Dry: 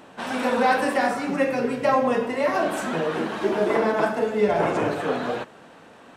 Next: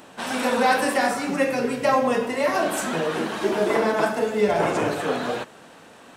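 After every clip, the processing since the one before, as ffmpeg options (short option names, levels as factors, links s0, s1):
-af "highshelf=f=4300:g=10"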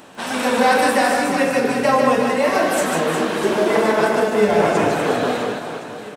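-af "aecho=1:1:150|360|654|1066|1642:0.631|0.398|0.251|0.158|0.1,volume=1.41"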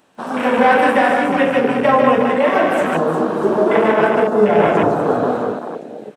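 -af "afwtdn=0.0708,volume=1.41"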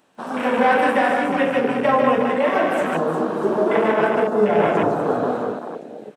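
-af "equalizer=f=75:w=1.6:g=-4.5,volume=0.631"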